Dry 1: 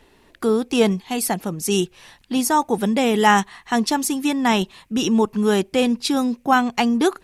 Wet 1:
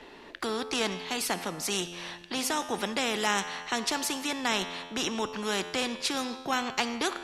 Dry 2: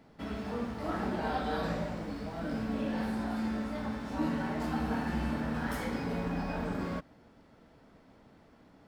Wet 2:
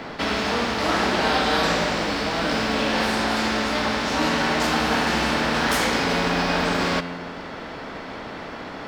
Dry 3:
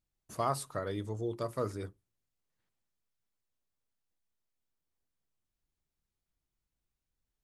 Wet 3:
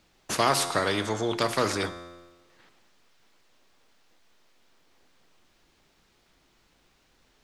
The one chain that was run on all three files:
three-way crossover with the lows and the highs turned down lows −13 dB, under 210 Hz, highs −16 dB, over 5,800 Hz
tuned comb filter 87 Hz, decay 1.1 s, harmonics all, mix 50%
every bin compressed towards the loudest bin 2 to 1
normalise the peak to −9 dBFS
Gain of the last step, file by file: −2.5, +18.0, +14.0 decibels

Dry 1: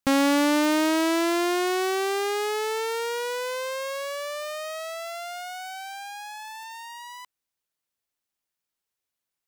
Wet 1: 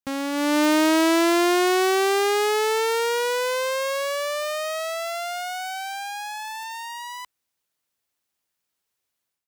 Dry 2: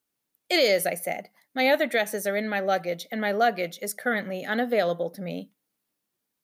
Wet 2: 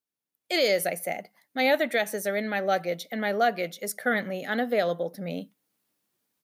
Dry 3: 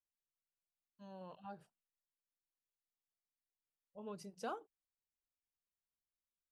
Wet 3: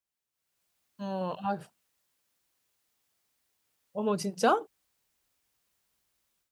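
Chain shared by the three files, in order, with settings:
automatic gain control gain up to 14.5 dB
high-pass filter 41 Hz
normalise the peak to −12 dBFS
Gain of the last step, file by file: −8.5, −11.0, +4.5 decibels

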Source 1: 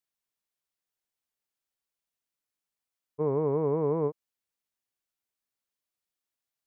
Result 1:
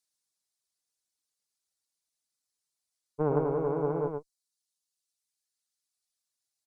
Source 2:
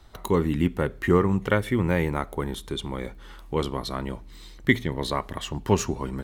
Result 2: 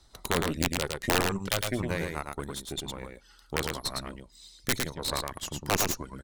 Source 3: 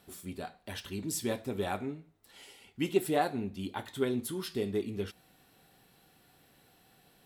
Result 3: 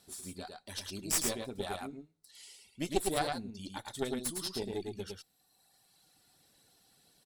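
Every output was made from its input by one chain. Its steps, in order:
reverb reduction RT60 1.7 s
flat-topped bell 6,400 Hz +11 dB
harmonic generator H 2 −11 dB, 4 −9 dB, 8 −20 dB, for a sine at −2.5 dBFS
wrap-around overflow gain 6 dB
on a send: single-tap delay 108 ms −4 dB
on the sum: normalise the peak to −12 dBFS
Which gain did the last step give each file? −1.5, −8.5, −5.5 decibels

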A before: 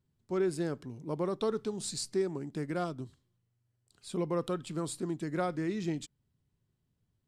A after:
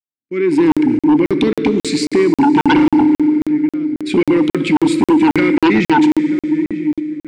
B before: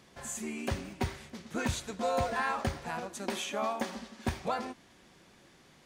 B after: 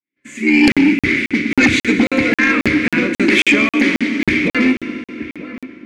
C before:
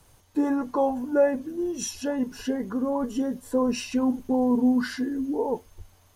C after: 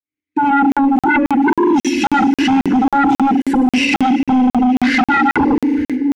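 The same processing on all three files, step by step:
fade in at the beginning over 0.70 s
noise gate −51 dBFS, range −30 dB
downward compressor 6 to 1, threshold −30 dBFS
brickwall limiter −27.5 dBFS
automatic gain control gain up to 10 dB
pair of resonant band-passes 800 Hz, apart 2.9 octaves
feedback echo with a low-pass in the loop 938 ms, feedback 33%, low-pass 1,700 Hz, level −15.5 dB
feedback delay network reverb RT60 3 s, high-frequency decay 0.9×, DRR 9 dB
sine wavefolder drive 15 dB, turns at −16.5 dBFS
regular buffer underruns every 0.27 s, samples 2,048, zero, from 0:00.72
loudness normalisation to −14 LKFS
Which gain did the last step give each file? +9.5, +10.5, +7.0 decibels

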